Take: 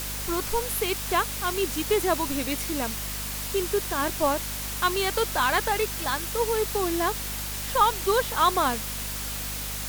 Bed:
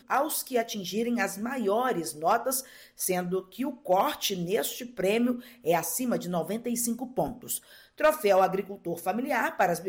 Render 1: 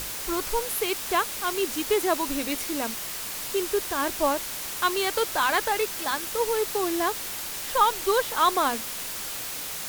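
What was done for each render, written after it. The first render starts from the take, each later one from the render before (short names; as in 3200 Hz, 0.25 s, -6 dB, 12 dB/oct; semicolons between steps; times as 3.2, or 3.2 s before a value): notches 50/100/150/200/250 Hz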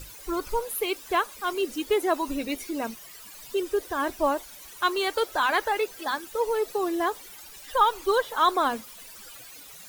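denoiser 16 dB, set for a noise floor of -34 dBFS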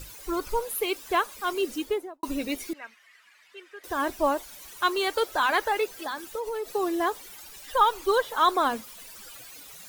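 1.73–2.23 studio fade out; 2.73–3.84 band-pass 1900 Hz, Q 2.6; 5.87–6.75 compressor, threshold -28 dBFS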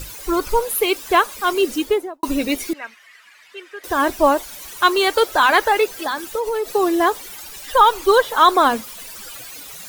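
gain +9.5 dB; limiter -2 dBFS, peak gain reduction 2.5 dB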